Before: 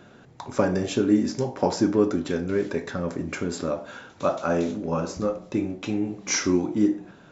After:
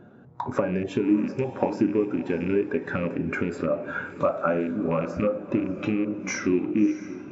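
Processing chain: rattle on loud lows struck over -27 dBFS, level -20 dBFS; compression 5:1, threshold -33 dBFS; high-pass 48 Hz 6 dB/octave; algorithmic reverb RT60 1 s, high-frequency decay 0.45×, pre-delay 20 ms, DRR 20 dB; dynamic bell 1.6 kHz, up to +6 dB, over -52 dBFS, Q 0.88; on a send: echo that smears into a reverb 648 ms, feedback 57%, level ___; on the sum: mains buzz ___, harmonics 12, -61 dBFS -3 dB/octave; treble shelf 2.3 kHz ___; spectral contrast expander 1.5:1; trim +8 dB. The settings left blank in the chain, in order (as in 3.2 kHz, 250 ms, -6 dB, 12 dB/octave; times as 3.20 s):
-9.5 dB, 120 Hz, -6.5 dB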